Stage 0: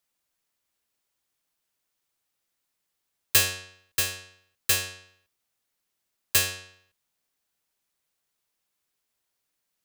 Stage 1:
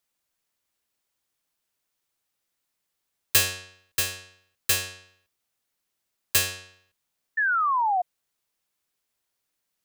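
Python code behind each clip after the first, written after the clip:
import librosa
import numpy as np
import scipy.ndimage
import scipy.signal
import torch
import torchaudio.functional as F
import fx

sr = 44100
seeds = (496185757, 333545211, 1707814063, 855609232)

y = fx.spec_paint(x, sr, seeds[0], shape='fall', start_s=7.37, length_s=0.65, low_hz=700.0, high_hz=1800.0, level_db=-23.0)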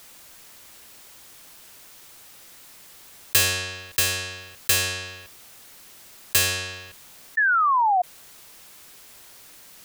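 y = fx.env_flatten(x, sr, amount_pct=50)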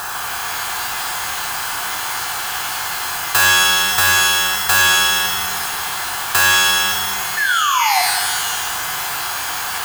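y = fx.bin_compress(x, sr, power=0.4)
y = fx.rev_shimmer(y, sr, seeds[1], rt60_s=1.4, semitones=12, shimmer_db=-2, drr_db=2.0)
y = y * 10.0 ** (-1.0 / 20.0)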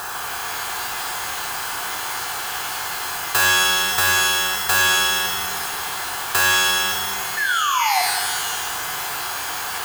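y = fx.peak_eq(x, sr, hz=420.0, db=5.0, octaves=1.0)
y = y * 10.0 ** (-4.0 / 20.0)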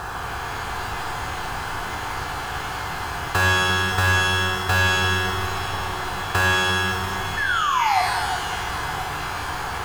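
y = fx.riaa(x, sr, side='playback')
y = fx.echo_alternate(y, sr, ms=345, hz=1400.0, feedback_pct=78, wet_db=-10.5)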